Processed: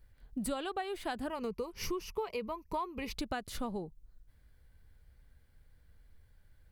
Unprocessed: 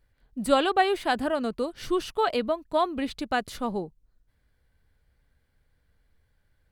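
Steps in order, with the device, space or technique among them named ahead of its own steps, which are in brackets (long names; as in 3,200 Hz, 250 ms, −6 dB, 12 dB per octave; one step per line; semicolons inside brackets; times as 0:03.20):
0:01.29–0:03.13: EQ curve with evenly spaced ripples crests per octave 0.81, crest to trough 13 dB
ASMR close-microphone chain (low-shelf EQ 120 Hz +8 dB; downward compressor 8 to 1, threshold −34 dBFS, peak gain reduction 18.5 dB; high-shelf EQ 8,600 Hz +6 dB)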